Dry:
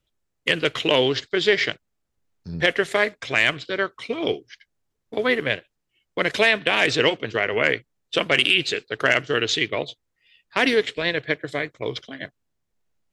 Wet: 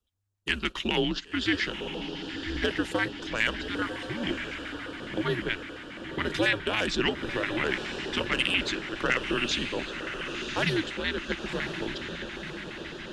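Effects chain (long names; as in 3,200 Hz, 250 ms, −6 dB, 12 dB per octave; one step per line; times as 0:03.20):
feedback delay with all-pass diffusion 1,035 ms, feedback 63%, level −7 dB
auto-filter notch square 7.2 Hz 580–2,200 Hz
frequency shifter −100 Hz
level −6 dB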